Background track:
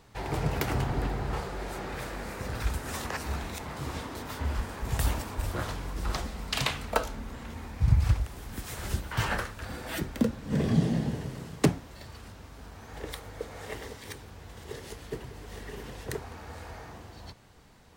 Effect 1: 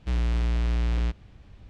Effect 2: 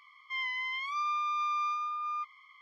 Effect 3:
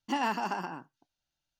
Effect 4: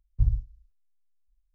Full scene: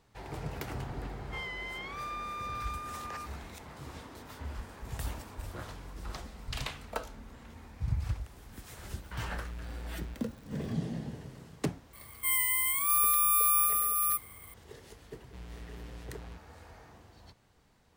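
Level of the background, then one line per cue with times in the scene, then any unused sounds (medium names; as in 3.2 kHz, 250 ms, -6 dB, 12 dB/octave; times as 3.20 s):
background track -9.5 dB
1.02 s: add 2 -5.5 dB + high-pass 1.1 kHz
6.28 s: add 4 -17.5 dB
9.04 s: add 1 -16.5 dB + zero-crossing glitches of -32.5 dBFS
11.93 s: add 2 + careless resampling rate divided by 4×, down filtered, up zero stuff
15.26 s: add 1 -17 dB + high-pass 73 Hz
not used: 3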